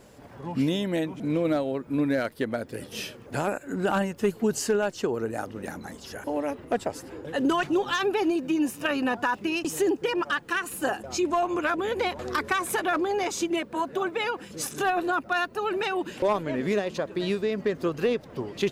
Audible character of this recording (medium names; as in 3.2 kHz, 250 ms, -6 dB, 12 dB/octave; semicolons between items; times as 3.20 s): noise floor -48 dBFS; spectral tilt -4.5 dB/octave